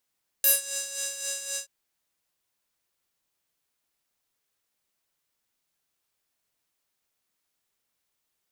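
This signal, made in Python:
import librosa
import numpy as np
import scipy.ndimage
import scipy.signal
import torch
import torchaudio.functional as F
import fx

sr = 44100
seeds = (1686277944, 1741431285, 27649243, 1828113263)

y = fx.sub_patch_tremolo(sr, seeds[0], note=73, wave='square', wave2='saw', interval_st=0, detune_cents=16, level2_db=-9.5, sub_db=-15.0, noise_db=-11.5, kind='bandpass', cutoff_hz=7300.0, q=2.9, env_oct=1.0, env_decay_s=0.2, env_sustain_pct=5, attack_ms=2.6, decay_s=0.17, sustain_db=-17, release_s=0.1, note_s=1.13, lfo_hz=3.8, tremolo_db=8.0)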